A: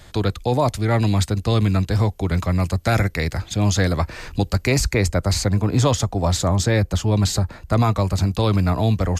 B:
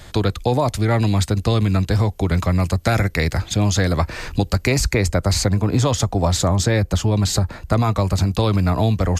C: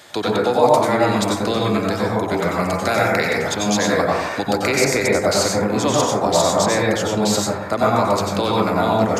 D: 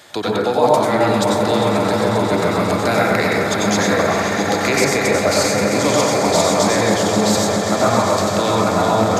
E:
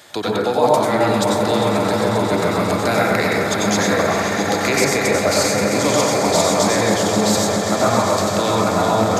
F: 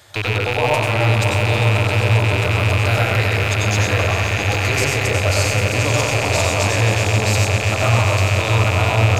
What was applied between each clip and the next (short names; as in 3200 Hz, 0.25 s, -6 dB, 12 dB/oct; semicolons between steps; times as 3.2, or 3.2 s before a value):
compressor, threshold -18 dBFS, peak gain reduction 6 dB; gain +4.5 dB
HPF 320 Hz 12 dB/oct; plate-style reverb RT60 0.97 s, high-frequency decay 0.25×, pre-delay 80 ms, DRR -4 dB
swelling echo 0.133 s, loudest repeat 5, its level -11 dB
high shelf 8000 Hz +3.5 dB; gain -1 dB
rattling part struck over -32 dBFS, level -6 dBFS; resonant low shelf 140 Hz +10 dB, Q 3; gain -3.5 dB